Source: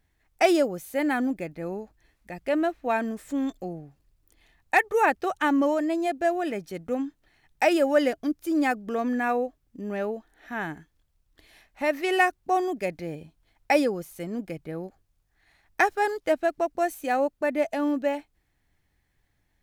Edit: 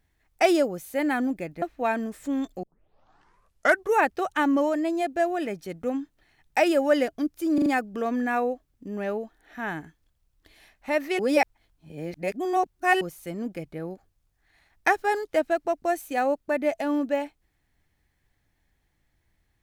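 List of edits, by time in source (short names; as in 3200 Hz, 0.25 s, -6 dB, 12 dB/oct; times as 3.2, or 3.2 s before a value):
1.62–2.67 cut
3.68 tape start 1.31 s
8.59 stutter 0.04 s, 4 plays
12.12–13.94 reverse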